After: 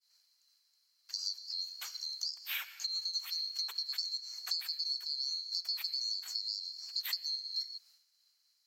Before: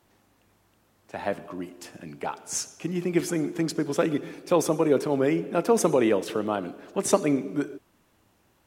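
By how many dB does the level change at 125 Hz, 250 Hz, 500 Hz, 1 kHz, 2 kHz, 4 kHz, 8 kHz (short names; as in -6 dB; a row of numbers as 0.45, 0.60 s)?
under -40 dB, under -40 dB, under -40 dB, -27.5 dB, -11.0 dB, +9.5 dB, -12.0 dB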